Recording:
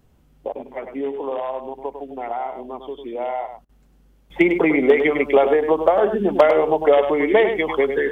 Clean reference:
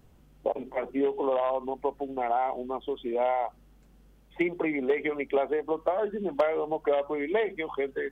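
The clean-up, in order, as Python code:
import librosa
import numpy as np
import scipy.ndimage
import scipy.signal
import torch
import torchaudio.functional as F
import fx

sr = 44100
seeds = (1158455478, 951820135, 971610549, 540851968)

y = fx.fix_interpolate(x, sr, at_s=(3.65,), length_ms=40.0)
y = fx.fix_echo_inverse(y, sr, delay_ms=101, level_db=-8.0)
y = fx.fix_level(y, sr, at_s=4.3, step_db=-11.0)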